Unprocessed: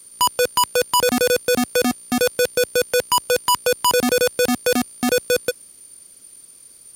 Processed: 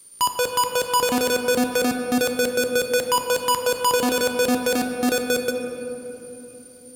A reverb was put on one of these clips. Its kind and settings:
rectangular room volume 220 cubic metres, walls hard, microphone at 0.31 metres
level −4 dB

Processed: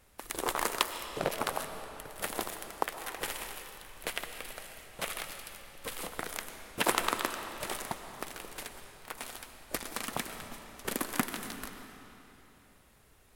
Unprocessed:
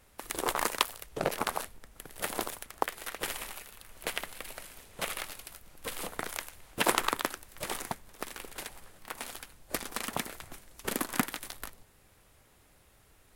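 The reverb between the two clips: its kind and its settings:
comb and all-pass reverb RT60 3.3 s, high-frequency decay 0.85×, pre-delay 80 ms, DRR 7.5 dB
level −1.5 dB

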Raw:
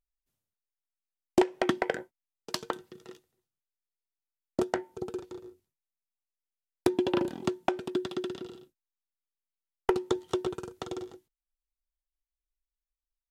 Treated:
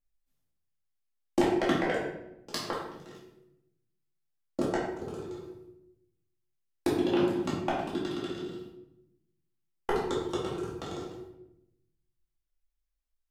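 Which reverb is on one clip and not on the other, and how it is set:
rectangular room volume 240 cubic metres, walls mixed, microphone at 2.3 metres
level −6 dB

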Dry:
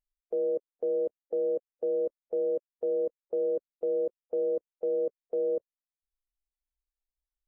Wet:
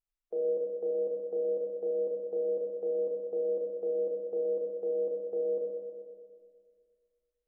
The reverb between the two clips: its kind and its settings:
spring reverb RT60 2 s, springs 31/40 ms, chirp 60 ms, DRR −2.5 dB
level −5.5 dB

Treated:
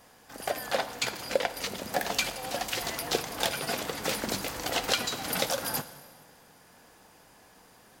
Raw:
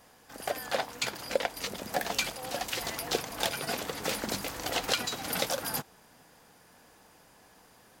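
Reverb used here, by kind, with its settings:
dense smooth reverb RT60 1.6 s, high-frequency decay 0.9×, DRR 12 dB
level +1.5 dB

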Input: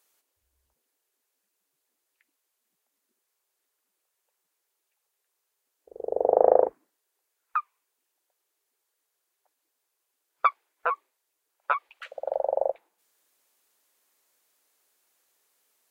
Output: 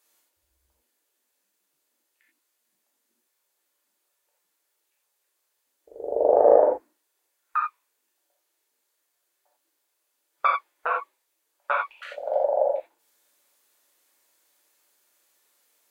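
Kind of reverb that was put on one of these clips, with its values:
reverb whose tail is shaped and stops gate 110 ms flat, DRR −3 dB
level −1 dB

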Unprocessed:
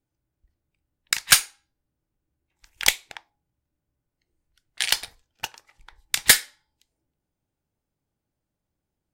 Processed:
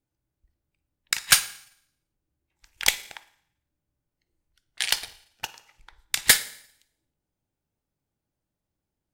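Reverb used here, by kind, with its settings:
four-comb reverb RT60 0.68 s, DRR 15.5 dB
level −2 dB

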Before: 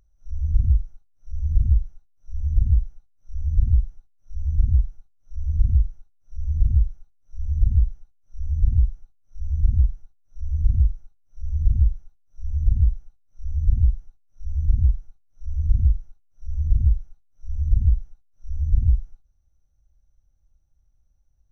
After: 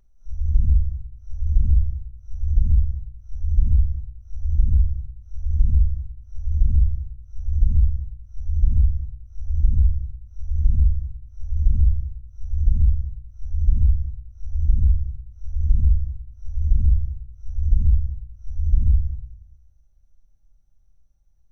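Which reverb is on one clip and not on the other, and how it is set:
rectangular room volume 1,000 cubic metres, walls furnished, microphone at 1.2 metres

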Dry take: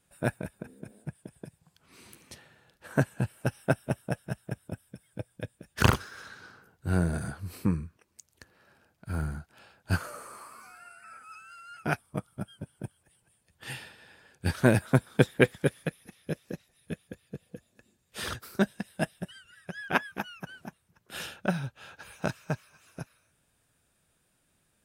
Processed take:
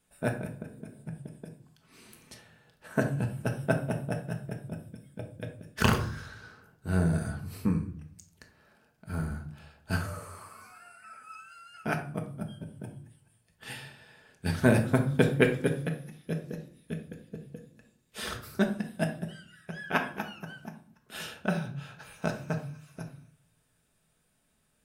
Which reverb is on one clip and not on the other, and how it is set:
rectangular room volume 590 cubic metres, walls furnished, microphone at 1.5 metres
level −2.5 dB

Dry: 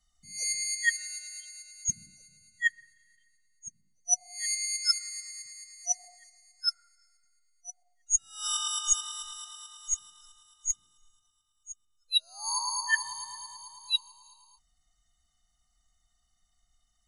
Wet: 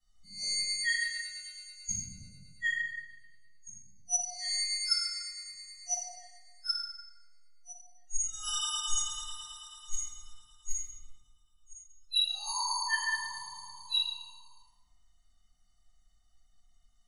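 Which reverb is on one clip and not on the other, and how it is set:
rectangular room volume 660 cubic metres, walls mixed, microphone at 9.7 metres
level −16.5 dB

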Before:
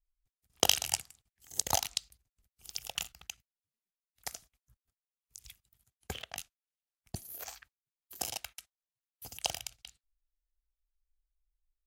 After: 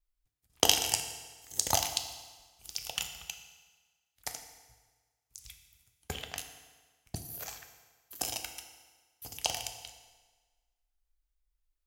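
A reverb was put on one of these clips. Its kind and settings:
feedback delay network reverb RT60 1.4 s, low-frequency decay 0.9×, high-frequency decay 0.9×, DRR 5.5 dB
level +1.5 dB

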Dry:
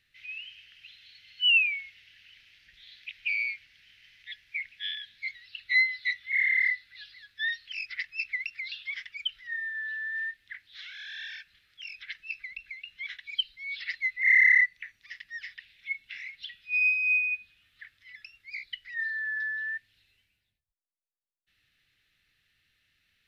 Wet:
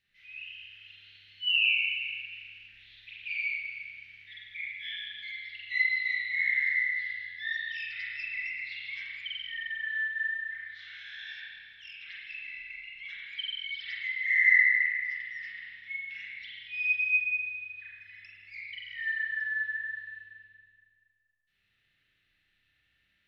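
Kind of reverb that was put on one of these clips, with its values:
spring reverb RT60 2 s, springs 30/35 ms, chirp 25 ms, DRR −8.5 dB
level −9.5 dB

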